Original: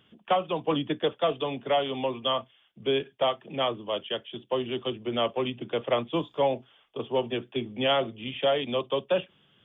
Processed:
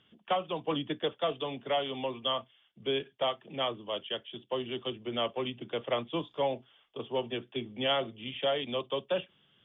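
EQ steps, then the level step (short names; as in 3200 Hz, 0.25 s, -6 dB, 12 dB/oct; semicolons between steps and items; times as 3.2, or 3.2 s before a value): air absorption 150 m; high shelf 3000 Hz +11.5 dB; notch 2500 Hz, Q 26; -5.5 dB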